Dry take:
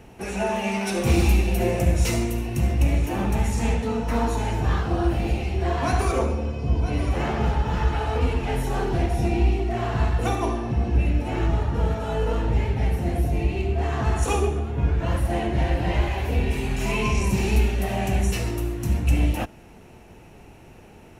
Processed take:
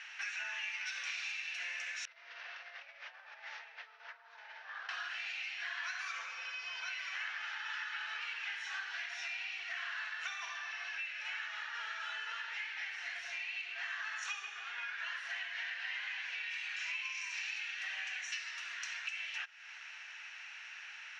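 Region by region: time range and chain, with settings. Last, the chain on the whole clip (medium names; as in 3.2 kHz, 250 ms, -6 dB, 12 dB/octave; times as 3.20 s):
2.05–4.89 s: one-bit delta coder 32 kbps, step -30 dBFS + band-pass filter 590 Hz, Q 3.1 + compressor with a negative ratio -42 dBFS
whole clip: elliptic band-pass 1.6–6 kHz, stop band 70 dB; treble shelf 2.9 kHz -12 dB; compression 6:1, threshold -55 dBFS; trim +15.5 dB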